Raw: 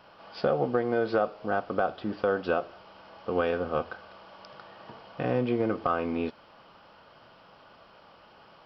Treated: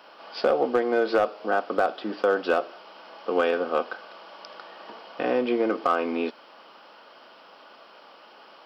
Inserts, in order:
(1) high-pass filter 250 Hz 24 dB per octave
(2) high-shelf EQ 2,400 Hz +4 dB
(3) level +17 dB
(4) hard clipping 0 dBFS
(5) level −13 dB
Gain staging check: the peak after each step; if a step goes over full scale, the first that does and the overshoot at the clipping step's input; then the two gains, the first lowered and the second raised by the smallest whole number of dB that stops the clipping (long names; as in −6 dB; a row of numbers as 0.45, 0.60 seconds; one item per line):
−13.5, −12.5, +4.5, 0.0, −13.0 dBFS
step 3, 4.5 dB
step 3 +12 dB, step 5 −8 dB